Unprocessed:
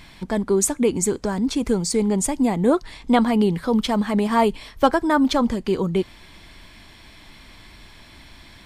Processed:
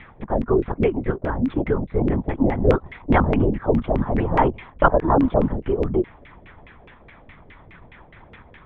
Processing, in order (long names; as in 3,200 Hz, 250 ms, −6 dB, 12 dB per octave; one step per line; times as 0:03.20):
linear-prediction vocoder at 8 kHz whisper
auto-filter low-pass saw down 4.8 Hz 450–2,400 Hz
level −1 dB